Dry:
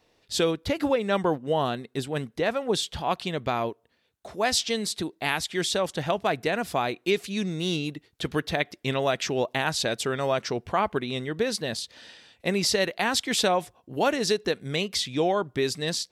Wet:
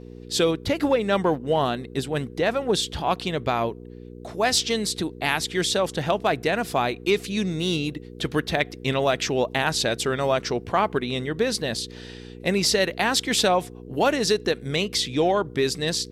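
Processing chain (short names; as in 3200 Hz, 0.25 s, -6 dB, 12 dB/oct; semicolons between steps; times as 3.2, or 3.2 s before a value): in parallel at -7 dB: one-sided clip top -19.5 dBFS; on the sum: buzz 60 Hz, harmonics 8, -41 dBFS -1 dB/oct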